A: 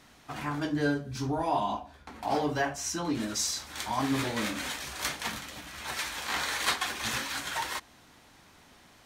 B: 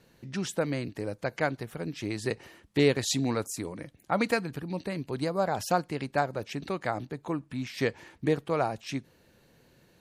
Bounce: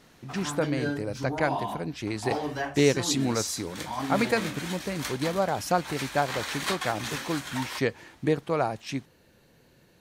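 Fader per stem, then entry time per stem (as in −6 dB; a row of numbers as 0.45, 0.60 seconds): −2.5, +1.5 decibels; 0.00, 0.00 seconds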